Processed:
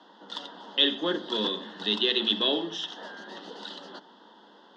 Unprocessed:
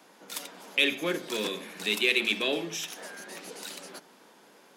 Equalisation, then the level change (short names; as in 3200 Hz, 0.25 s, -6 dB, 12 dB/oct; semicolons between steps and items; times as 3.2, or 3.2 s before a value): Butterworth band-stop 2300 Hz, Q 1.9; speaker cabinet 210–4400 Hz, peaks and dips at 210 Hz +8 dB, 310 Hz +4 dB, 920 Hz +7 dB, 2100 Hz +7 dB, 3300 Hz +9 dB; 0.0 dB